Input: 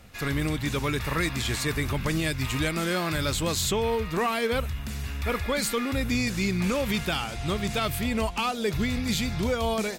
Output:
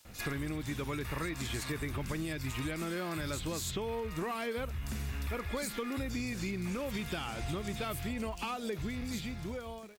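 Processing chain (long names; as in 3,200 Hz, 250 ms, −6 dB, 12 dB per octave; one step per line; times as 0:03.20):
fade-out on the ending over 2.33 s
parametric band 330 Hz +3.5 dB 0.45 octaves
multiband delay without the direct sound highs, lows 50 ms, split 3,800 Hz
downward compressor 10 to 1, threshold −33 dBFS, peak gain reduction 12 dB
surface crackle 340 per second −50 dBFS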